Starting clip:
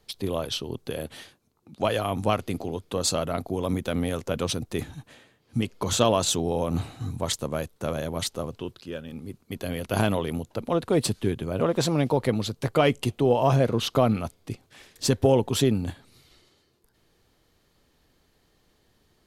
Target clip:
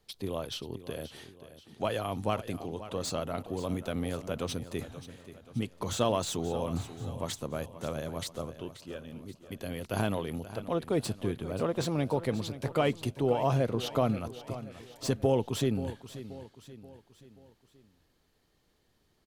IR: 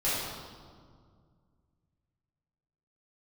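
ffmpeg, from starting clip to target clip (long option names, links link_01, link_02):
-filter_complex "[0:a]asettb=1/sr,asplit=3[link_01][link_02][link_03];[link_01]atrim=end=2.614[link_04];[link_02]atrim=start=2.61:end=3.2,asetpts=PTS-STARTPTS,afade=type=in:duration=0.004:curve=qsin,afade=type=out:start_time=0.586:duration=0.004:curve=qsin,lowpass=10000[link_05];[link_03]atrim=start=3.196[link_06];[link_04][link_05]acrossfade=duration=0.004:curve1=hsin:curve2=qsin[link_07];[link_07][link_06]acrossfade=duration=0.004:curve1=qsin:curve2=hsin,acrossover=split=2000[link_08][link_09];[link_09]asoftclip=type=tanh:threshold=-25.5dB[link_10];[link_08][link_10]amix=inputs=2:normalize=0,aecho=1:1:531|1062|1593|2124:0.2|0.0938|0.0441|0.0207,volume=-6.5dB"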